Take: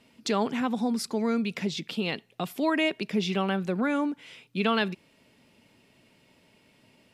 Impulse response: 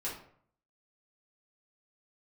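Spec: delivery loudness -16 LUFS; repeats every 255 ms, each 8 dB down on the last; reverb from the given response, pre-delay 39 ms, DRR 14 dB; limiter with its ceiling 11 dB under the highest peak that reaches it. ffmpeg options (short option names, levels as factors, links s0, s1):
-filter_complex "[0:a]alimiter=limit=0.0708:level=0:latency=1,aecho=1:1:255|510|765|1020|1275:0.398|0.159|0.0637|0.0255|0.0102,asplit=2[s0][s1];[1:a]atrim=start_sample=2205,adelay=39[s2];[s1][s2]afir=irnorm=-1:irlink=0,volume=0.158[s3];[s0][s3]amix=inputs=2:normalize=0,volume=6.31"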